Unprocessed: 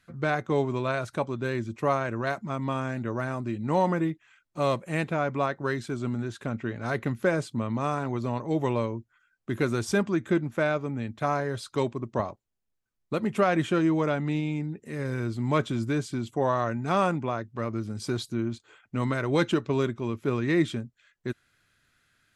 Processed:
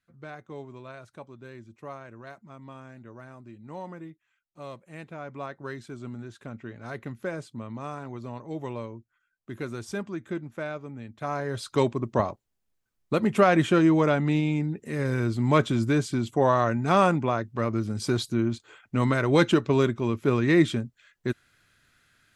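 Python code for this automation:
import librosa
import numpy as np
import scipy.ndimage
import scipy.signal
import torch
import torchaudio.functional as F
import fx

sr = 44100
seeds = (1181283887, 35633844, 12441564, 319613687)

y = fx.gain(x, sr, db=fx.line((4.88, -15.0), (5.58, -8.0), (11.1, -8.0), (11.72, 4.0)))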